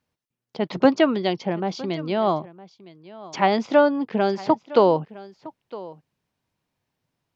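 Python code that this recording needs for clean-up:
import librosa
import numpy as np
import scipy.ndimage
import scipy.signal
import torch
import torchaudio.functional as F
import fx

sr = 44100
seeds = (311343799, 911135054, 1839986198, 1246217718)

y = fx.fix_echo_inverse(x, sr, delay_ms=961, level_db=-19.0)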